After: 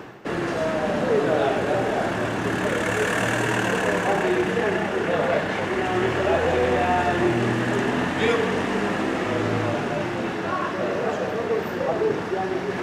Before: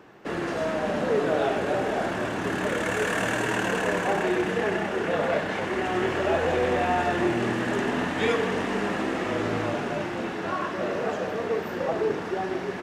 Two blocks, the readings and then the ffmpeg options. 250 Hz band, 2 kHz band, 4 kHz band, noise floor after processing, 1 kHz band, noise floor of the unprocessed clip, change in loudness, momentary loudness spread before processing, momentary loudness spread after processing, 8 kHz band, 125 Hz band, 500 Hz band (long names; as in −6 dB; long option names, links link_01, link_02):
+3.5 dB, +3.0 dB, +3.0 dB, −28 dBFS, +3.0 dB, −32 dBFS, +3.0 dB, 5 LU, 5 LU, +3.0 dB, +5.5 dB, +3.0 dB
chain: -af "equalizer=frequency=120:width=2.9:gain=5,areverse,acompressor=mode=upward:threshold=-26dB:ratio=2.5,areverse,volume=3dB"